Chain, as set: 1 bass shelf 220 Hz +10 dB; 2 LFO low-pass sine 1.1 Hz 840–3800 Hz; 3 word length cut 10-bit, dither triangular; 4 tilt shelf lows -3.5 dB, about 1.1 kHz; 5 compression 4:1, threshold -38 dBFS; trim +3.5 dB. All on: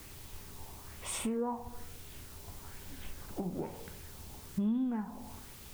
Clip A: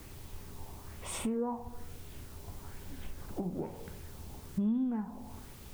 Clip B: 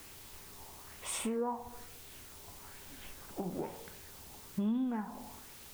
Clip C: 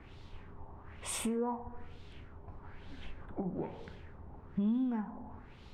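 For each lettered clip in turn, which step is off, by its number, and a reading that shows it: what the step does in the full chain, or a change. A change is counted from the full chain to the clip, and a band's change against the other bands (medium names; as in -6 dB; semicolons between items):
4, momentary loudness spread change +1 LU; 1, 125 Hz band -4.0 dB; 3, 4 kHz band -2.0 dB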